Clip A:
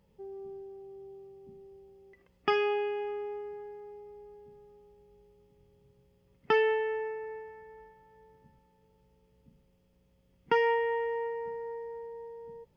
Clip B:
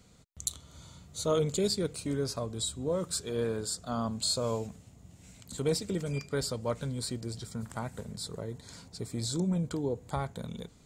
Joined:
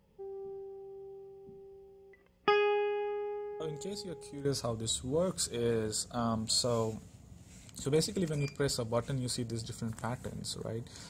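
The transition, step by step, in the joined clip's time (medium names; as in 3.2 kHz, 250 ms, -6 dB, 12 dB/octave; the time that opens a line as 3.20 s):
clip A
3.60 s: add clip B from 1.33 s 0.85 s -11.5 dB
4.45 s: go over to clip B from 2.18 s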